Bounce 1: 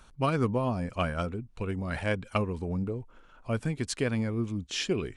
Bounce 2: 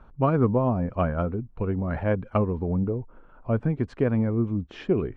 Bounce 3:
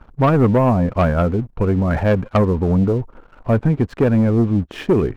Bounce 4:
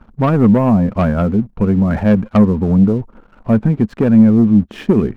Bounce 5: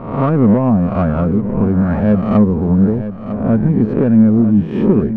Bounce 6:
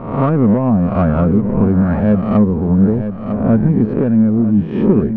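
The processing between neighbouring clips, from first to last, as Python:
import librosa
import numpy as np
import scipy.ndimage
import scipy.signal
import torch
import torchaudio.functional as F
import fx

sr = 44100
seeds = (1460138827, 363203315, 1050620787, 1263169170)

y1 = scipy.signal.sosfilt(scipy.signal.butter(2, 1100.0, 'lowpass', fs=sr, output='sos'), x)
y1 = y1 * librosa.db_to_amplitude(6.0)
y2 = fx.leveller(y1, sr, passes=2)
y2 = y2 * librosa.db_to_amplitude(3.0)
y3 = fx.peak_eq(y2, sr, hz=210.0, db=11.5, octaves=0.46)
y3 = y3 * librosa.db_to_amplitude(-1.0)
y4 = fx.spec_swells(y3, sr, rise_s=0.72)
y4 = fx.lowpass(y4, sr, hz=1100.0, slope=6)
y4 = y4 + 10.0 ** (-11.5 / 20.0) * np.pad(y4, (int(952 * sr / 1000.0), 0))[:len(y4)]
y4 = y4 * librosa.db_to_amplitude(-1.0)
y5 = fx.rider(y4, sr, range_db=3, speed_s=0.5)
y5 = fx.air_absorb(y5, sr, metres=82.0)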